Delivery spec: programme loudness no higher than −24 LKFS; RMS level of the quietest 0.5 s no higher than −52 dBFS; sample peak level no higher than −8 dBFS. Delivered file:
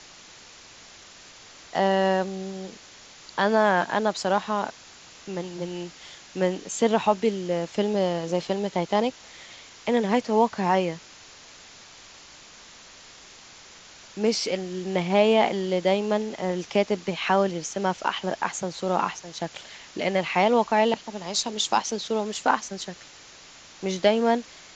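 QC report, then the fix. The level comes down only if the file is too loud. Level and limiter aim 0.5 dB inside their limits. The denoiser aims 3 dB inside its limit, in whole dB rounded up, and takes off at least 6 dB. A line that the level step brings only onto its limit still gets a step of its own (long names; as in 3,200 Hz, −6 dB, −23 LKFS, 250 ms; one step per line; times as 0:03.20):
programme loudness −25.0 LKFS: in spec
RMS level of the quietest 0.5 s −48 dBFS: out of spec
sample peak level −6.5 dBFS: out of spec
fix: broadband denoise 7 dB, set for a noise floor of −48 dBFS
brickwall limiter −8.5 dBFS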